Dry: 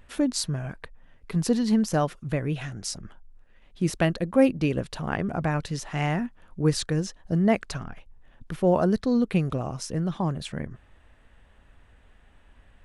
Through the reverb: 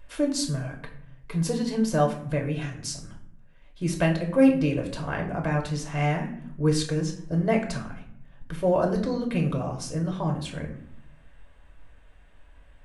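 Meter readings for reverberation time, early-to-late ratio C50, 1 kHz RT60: 0.70 s, 9.5 dB, 0.60 s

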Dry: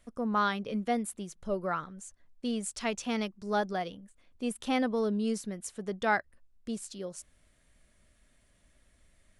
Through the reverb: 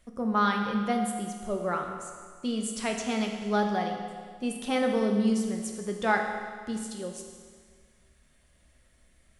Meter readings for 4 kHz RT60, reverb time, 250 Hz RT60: 1.7 s, 1.8 s, 1.9 s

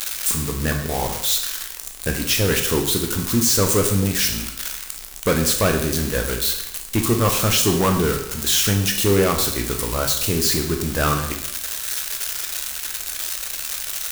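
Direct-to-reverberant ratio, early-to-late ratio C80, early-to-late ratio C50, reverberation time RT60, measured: 2.5 dB, 9.5 dB, 6.5 dB, 0.80 s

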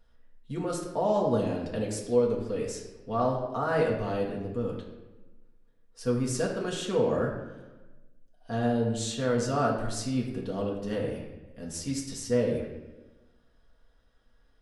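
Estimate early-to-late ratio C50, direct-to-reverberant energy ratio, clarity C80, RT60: 4.5 dB, −3.0 dB, 6.5 dB, 1.1 s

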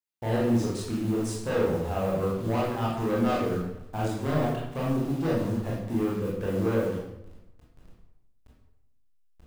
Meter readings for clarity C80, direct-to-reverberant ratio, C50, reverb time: 4.5 dB, −5.5 dB, 0.5 dB, 0.90 s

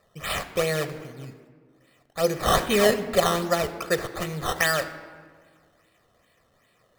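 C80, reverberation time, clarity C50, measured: 13.5 dB, 1.7 s, 12.5 dB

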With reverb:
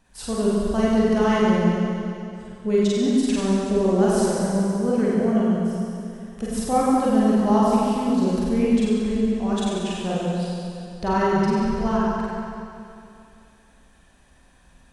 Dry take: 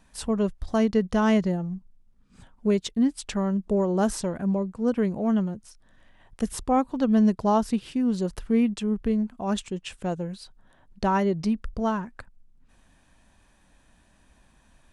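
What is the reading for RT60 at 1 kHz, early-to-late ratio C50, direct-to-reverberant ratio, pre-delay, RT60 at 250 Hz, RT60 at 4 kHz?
2.6 s, −3.5 dB, −7.0 dB, 38 ms, 2.6 s, 2.6 s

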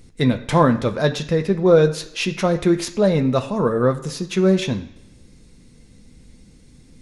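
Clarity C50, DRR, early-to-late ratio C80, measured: 13.0 dB, 5.0 dB, 16.0 dB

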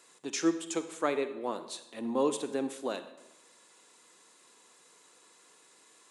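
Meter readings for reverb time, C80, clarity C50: 0.95 s, 13.0 dB, 11.0 dB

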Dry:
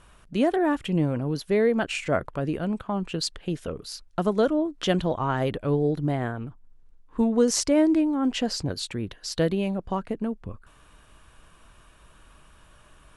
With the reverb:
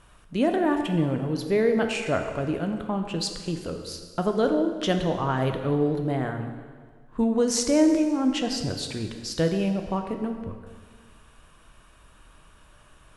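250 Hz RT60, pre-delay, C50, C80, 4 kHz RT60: 1.6 s, 5 ms, 6.5 dB, 8.0 dB, 1.6 s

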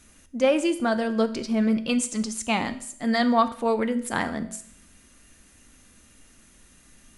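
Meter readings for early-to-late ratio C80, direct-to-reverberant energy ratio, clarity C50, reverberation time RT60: 17.0 dB, 9.5 dB, 14.0 dB, 0.60 s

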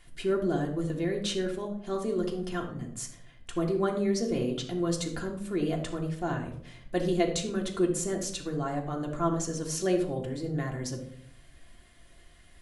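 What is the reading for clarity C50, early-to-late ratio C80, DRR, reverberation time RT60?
8.0 dB, 12.0 dB, −0.5 dB, 0.65 s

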